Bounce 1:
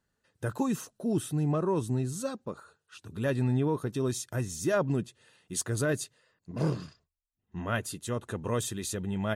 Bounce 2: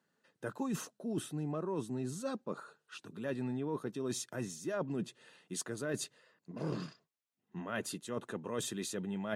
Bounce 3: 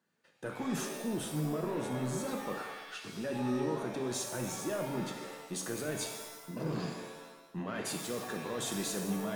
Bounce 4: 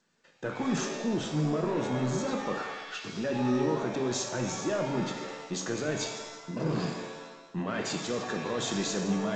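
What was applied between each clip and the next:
high-pass 160 Hz 24 dB/octave; treble shelf 6.8 kHz -8.5 dB; reverse; compression 4:1, threshold -38 dBFS, peak gain reduction 13.5 dB; reverse; trim +2.5 dB
peak limiter -30 dBFS, peak gain reduction 7 dB; waveshaping leveller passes 1; pitch-shifted reverb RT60 1 s, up +7 st, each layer -2 dB, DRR 3.5 dB
trim +5.5 dB; G.722 64 kbps 16 kHz

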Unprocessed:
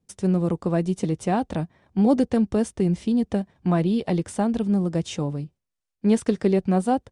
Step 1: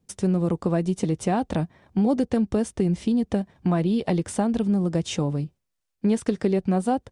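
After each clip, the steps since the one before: compression 2.5:1, threshold -25 dBFS, peak gain reduction 8 dB; trim +4 dB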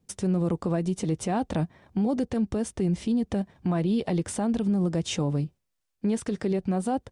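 peak limiter -18.5 dBFS, peak gain reduction 8.5 dB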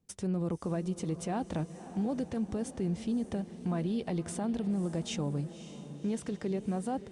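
echo that smears into a reverb 555 ms, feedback 53%, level -13 dB; trim -7 dB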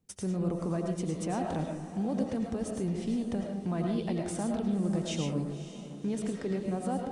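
algorithmic reverb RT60 0.55 s, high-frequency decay 0.45×, pre-delay 65 ms, DRR 1.5 dB

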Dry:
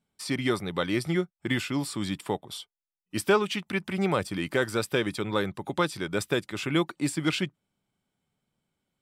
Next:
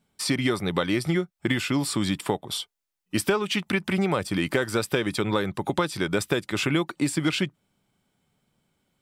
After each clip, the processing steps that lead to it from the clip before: compression 6:1, threshold -29 dBFS, peak gain reduction 11.5 dB; trim +8.5 dB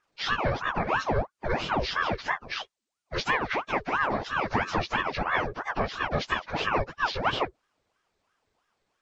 frequency axis rescaled in octaves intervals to 79%; ring modulator with a swept carrier 830 Hz, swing 75%, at 3 Hz; trim +1.5 dB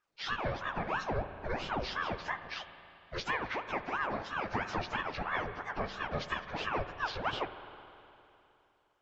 reverberation RT60 2.9 s, pre-delay 36 ms, DRR 10 dB; trim -8 dB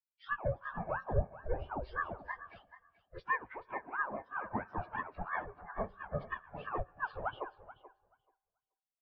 on a send: feedback delay 432 ms, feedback 42%, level -6.5 dB; on the sum: spectral contrast expander 2.5:1; trim +1 dB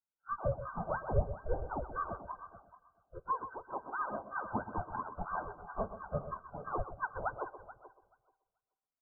brick-wall FIR low-pass 1.6 kHz; on a send: delay 127 ms -11.5 dB; on the sum: trim +1 dB

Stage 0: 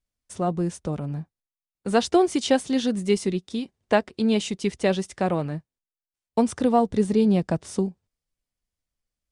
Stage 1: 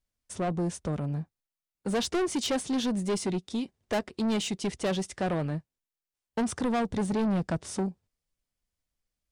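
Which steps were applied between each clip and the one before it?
saturation -24 dBFS, distortion -7 dB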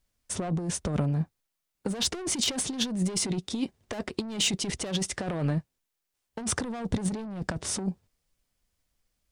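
compressor with a negative ratio -32 dBFS, ratio -0.5; trim +4 dB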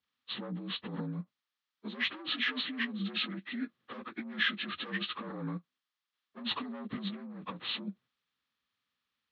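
frequency axis rescaled in octaves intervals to 77%; cabinet simulation 190–4800 Hz, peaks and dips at 240 Hz +4 dB, 390 Hz -6 dB, 660 Hz -6 dB, 1.2 kHz +8 dB, 1.8 kHz +5 dB, 3.3 kHz +5 dB; endings held to a fixed fall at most 560 dB/s; trim -6.5 dB

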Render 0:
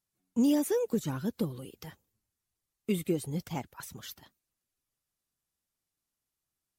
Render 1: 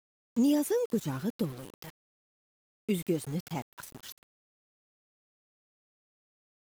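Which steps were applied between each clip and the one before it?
small samples zeroed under -42.5 dBFS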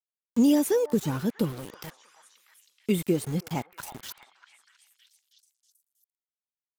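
repeats whose band climbs or falls 320 ms, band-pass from 1 kHz, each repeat 0.7 oct, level -9.5 dB; trim +5 dB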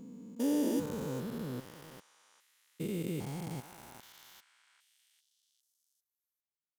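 spectrogram pixelated in time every 400 ms; trim -4.5 dB

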